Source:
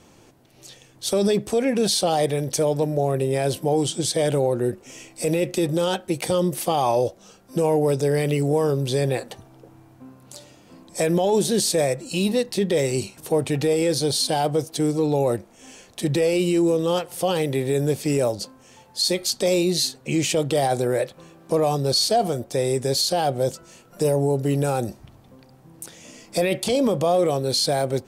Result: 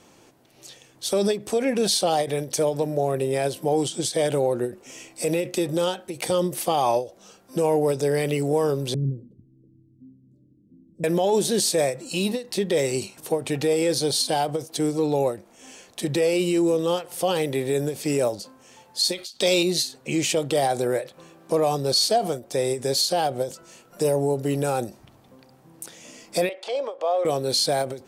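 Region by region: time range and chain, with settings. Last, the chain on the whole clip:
8.94–11.04 s: inverse Chebyshev low-pass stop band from 740 Hz, stop band 50 dB + dynamic bell 120 Hz, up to +7 dB, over -40 dBFS, Q 1
19.12–19.63 s: companding laws mixed up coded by A + peaking EQ 3.5 kHz +10 dB 1.3 oct
26.49–27.25 s: median filter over 3 samples + high-pass 500 Hz 24 dB/octave + tape spacing loss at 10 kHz 22 dB
whole clip: bass shelf 130 Hz -11 dB; endings held to a fixed fall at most 190 dB/s

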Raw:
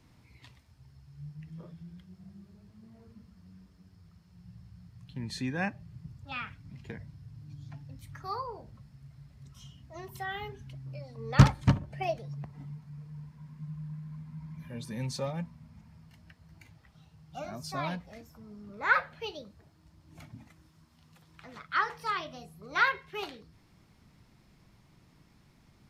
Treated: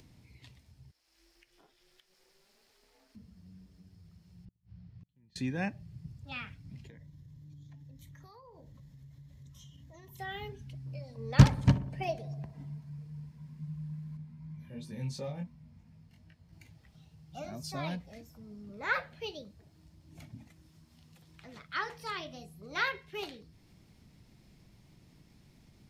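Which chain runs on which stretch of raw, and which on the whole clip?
0.91–3.15 s: high-pass 920 Hz + ring modulator 190 Hz
4.45–5.36 s: inverted gate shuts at -42 dBFS, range -31 dB + distance through air 180 m
6.87–10.19 s: rippled EQ curve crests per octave 1.1, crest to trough 8 dB + compression 5:1, threshold -49 dBFS
10.86–12.98 s: small resonant body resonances 990/1600 Hz, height 6 dB, ringing for 25 ms + filtered feedback delay 61 ms, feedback 76%, low-pass 1.8 kHz, level -17 dB
14.17–16.53 s: treble shelf 4.3 kHz -5 dB + chorus 2.8 Hz, delay 19.5 ms, depth 2.6 ms
whole clip: upward compressor, threshold -54 dBFS; peaking EQ 1.2 kHz -8.5 dB 1.2 oct

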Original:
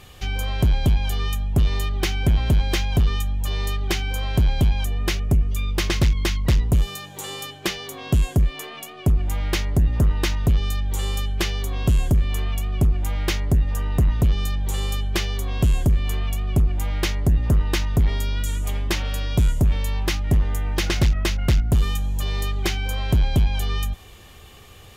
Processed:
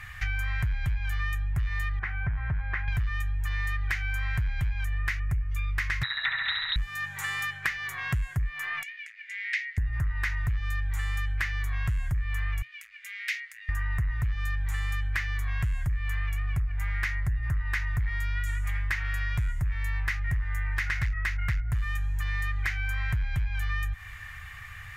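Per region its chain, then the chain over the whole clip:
1.99–2.88 s: low-pass 1.2 kHz + bass shelf 140 Hz -9 dB
6.03–6.76 s: high-pass 86 Hz + frequency inversion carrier 3.9 kHz + flutter echo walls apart 11.6 m, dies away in 1.2 s
8.83–9.78 s: steep high-pass 1.9 kHz 48 dB/octave + distance through air 110 m
12.62–13.69 s: inverse Chebyshev high-pass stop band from 530 Hz, stop band 70 dB + treble shelf 6.5 kHz -8 dB
whole clip: FFT filter 120 Hz 0 dB, 290 Hz -28 dB, 530 Hz -20 dB, 1.9 kHz +14 dB, 3.1 kHz -8 dB; compression, threshold -28 dBFS; trim +2 dB

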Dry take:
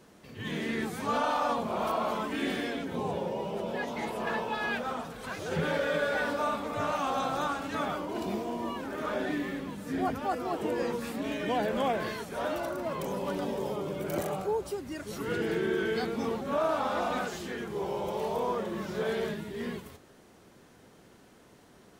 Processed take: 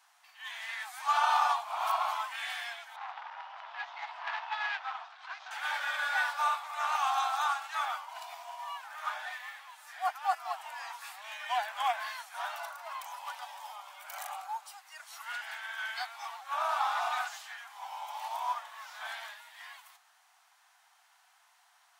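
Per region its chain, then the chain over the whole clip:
2.96–5.51 s: low-pass 4.9 kHz 24 dB/octave + transformer saturation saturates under 1.4 kHz
whole clip: steep high-pass 730 Hz 72 dB/octave; upward expansion 1.5:1, over -43 dBFS; trim +4.5 dB

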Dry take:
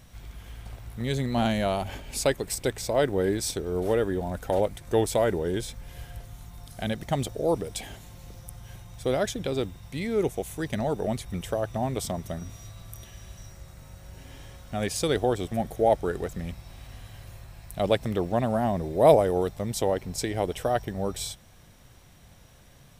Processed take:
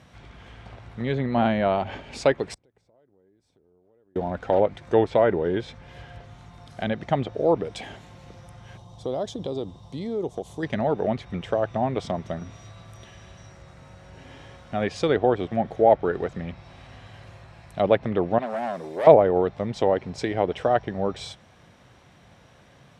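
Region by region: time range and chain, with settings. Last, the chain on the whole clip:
2.54–4.16 s: tilt shelf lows +6 dB, about 1.1 kHz + compression 8:1, threshold -32 dBFS + inverted gate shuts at -30 dBFS, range -30 dB
8.77–10.63 s: high-order bell 1.9 kHz -14.5 dB 1.2 oct + compression 2.5:1, threshold -31 dBFS
18.38–19.07 s: high-pass 420 Hz 6 dB/octave + treble shelf 5.6 kHz +11.5 dB + valve stage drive 27 dB, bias 0.5
whole clip: RIAA curve playback; low-pass that closes with the level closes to 2.7 kHz, closed at -14.5 dBFS; frequency weighting A; trim +5 dB

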